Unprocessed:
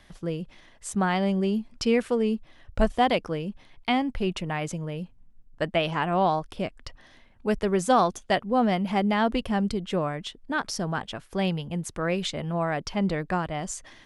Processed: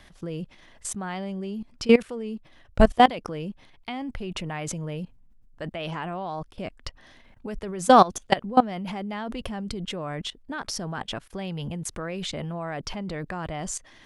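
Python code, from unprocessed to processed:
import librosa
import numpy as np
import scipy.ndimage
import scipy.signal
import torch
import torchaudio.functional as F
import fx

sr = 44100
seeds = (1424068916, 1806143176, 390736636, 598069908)

y = fx.level_steps(x, sr, step_db=20)
y = F.gain(torch.from_numpy(y), 8.0).numpy()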